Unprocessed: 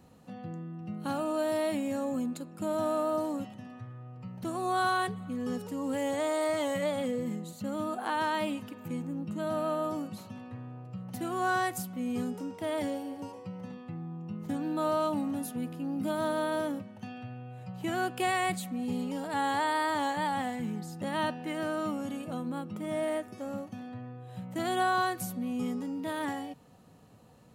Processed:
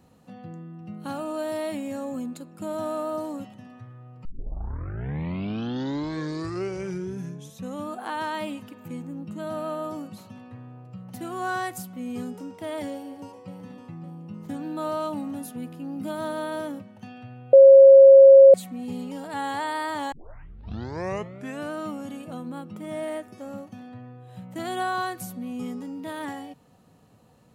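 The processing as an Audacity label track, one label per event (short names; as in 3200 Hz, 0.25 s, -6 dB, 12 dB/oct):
4.250000	4.250000	tape start 3.71 s
12.910000	13.540000	echo throw 0.56 s, feedback 45%, level -11 dB
17.530000	18.540000	bleep 543 Hz -6.5 dBFS
20.120000	20.120000	tape start 1.60 s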